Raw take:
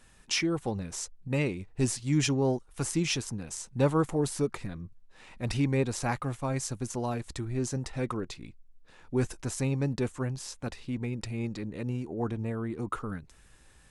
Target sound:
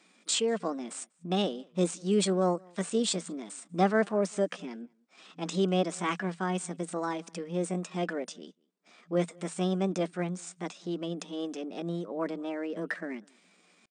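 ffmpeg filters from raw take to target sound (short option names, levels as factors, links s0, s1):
-filter_complex "[0:a]asetrate=60591,aresample=44100,atempo=0.727827,acrossover=split=250|780|2100[s0][s1][s2][s3];[s3]acrusher=bits=3:mode=log:mix=0:aa=0.000001[s4];[s0][s1][s2][s4]amix=inputs=4:normalize=0,afftfilt=real='re*between(b*sr/4096,170,9300)':imag='im*between(b*sr/4096,170,9300)':win_size=4096:overlap=0.75,asplit=2[s5][s6];[s6]adelay=192.4,volume=0.0398,highshelf=f=4000:g=-4.33[s7];[s5][s7]amix=inputs=2:normalize=0"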